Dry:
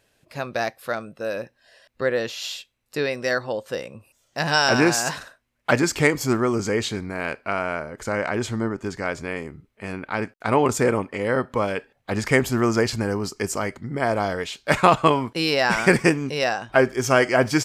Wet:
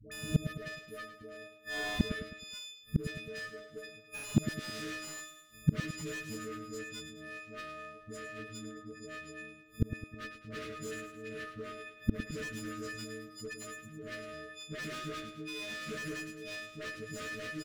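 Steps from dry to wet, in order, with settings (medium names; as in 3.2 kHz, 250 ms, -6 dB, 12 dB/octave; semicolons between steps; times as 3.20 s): partials quantised in pitch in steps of 6 st; treble shelf 3.6 kHz -9 dB; transient shaper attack +8 dB, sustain +2 dB; phase dispersion highs, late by 117 ms, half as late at 600 Hz; one-sided clip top -18 dBFS, bottom -13.5 dBFS; inverted gate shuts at -31 dBFS, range -39 dB; Butterworth band-stop 840 Hz, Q 1.1; feedback delay 106 ms, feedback 48%, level -10 dB; slew-rate limiter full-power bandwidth 4.7 Hz; trim +18 dB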